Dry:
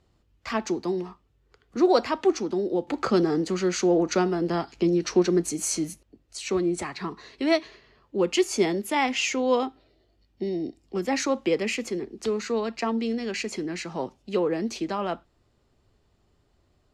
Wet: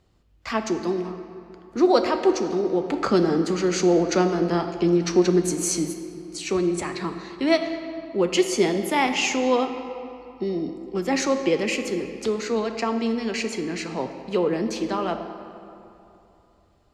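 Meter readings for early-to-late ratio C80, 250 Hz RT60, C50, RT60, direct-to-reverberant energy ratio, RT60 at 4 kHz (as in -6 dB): 9.0 dB, 2.8 s, 8.0 dB, 2.9 s, 7.0 dB, 1.7 s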